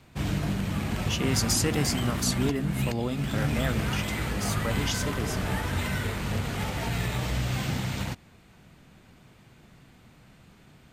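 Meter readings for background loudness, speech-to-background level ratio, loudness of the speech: -30.0 LUFS, -0.5 dB, -30.5 LUFS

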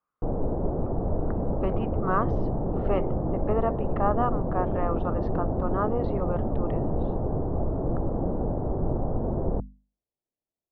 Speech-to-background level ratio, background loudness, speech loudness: -2.0 dB, -29.5 LUFS, -31.5 LUFS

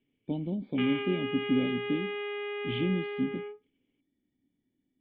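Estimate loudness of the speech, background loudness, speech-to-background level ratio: -32.0 LUFS, -35.5 LUFS, 3.5 dB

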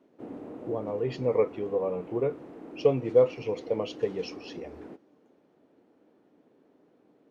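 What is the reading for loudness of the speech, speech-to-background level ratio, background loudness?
-29.0 LUFS, 15.5 dB, -44.5 LUFS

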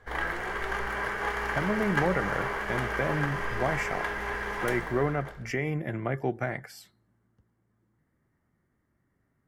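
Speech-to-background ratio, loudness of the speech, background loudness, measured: 0.0 dB, -31.5 LUFS, -31.5 LUFS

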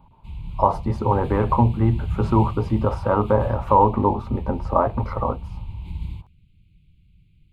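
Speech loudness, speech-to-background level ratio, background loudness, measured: -21.5 LUFS, 10.5 dB, -32.0 LUFS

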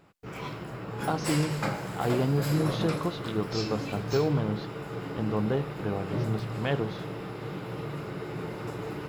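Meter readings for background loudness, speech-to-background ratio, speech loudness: -35.0 LUFS, 4.0 dB, -31.0 LUFS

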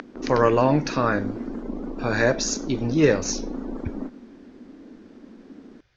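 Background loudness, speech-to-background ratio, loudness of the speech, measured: -33.5 LUFS, 11.0 dB, -22.5 LUFS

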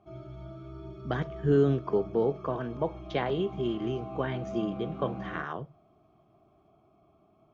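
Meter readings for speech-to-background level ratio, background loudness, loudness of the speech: 11.0 dB, -42.0 LUFS, -31.0 LUFS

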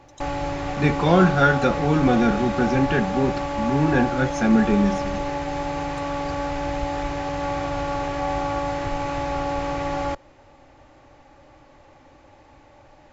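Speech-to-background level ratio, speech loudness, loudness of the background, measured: 6.0 dB, -21.0 LUFS, -27.0 LUFS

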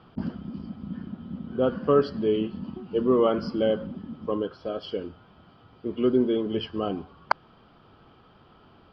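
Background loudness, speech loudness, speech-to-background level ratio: -38.0 LUFS, -27.0 LUFS, 11.0 dB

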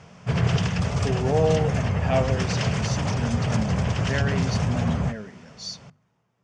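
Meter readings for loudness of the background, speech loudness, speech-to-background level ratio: -25.0 LUFS, -30.0 LUFS, -5.0 dB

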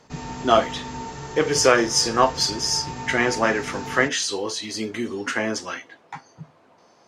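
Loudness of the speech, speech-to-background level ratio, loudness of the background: -22.0 LUFS, 12.0 dB, -34.0 LUFS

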